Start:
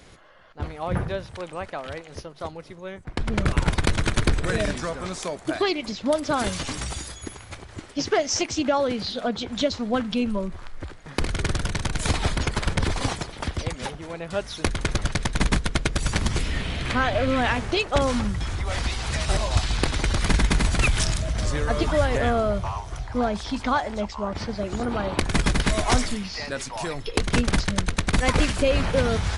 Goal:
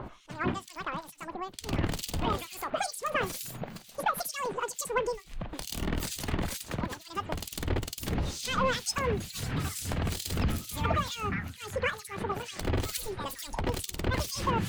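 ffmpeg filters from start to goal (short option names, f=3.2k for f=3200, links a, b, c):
-filter_complex "[0:a]acrossover=split=680|1500[a][b][c];[a]acompressor=mode=upward:threshold=-26dB:ratio=2.5[d];[d][b][c]amix=inputs=3:normalize=0,alimiter=limit=-12dB:level=0:latency=1:release=258,acrossover=split=1500[e][f];[e]aeval=exprs='val(0)*(1-1/2+1/2*cos(2*PI*1.1*n/s))':c=same[g];[f]aeval=exprs='val(0)*(1-1/2-1/2*cos(2*PI*1.1*n/s))':c=same[h];[g][h]amix=inputs=2:normalize=0,asetrate=88200,aresample=44100,flanger=delay=3.2:depth=1.2:regen=-79:speed=0.15:shape=sinusoidal,asplit=2[i][j];[j]asoftclip=type=tanh:threshold=-31.5dB,volume=-9dB[k];[i][k]amix=inputs=2:normalize=0"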